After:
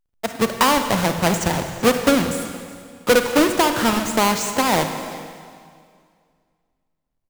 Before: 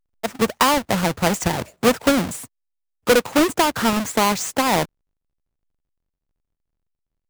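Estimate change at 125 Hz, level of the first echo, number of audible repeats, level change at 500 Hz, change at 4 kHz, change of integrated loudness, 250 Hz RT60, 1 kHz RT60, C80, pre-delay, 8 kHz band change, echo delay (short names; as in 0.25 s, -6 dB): +1.0 dB, -22.0 dB, 1, +1.0 dB, +1.0 dB, +0.5 dB, 2.2 s, 2.1 s, 8.0 dB, 32 ms, +1.0 dB, 0.382 s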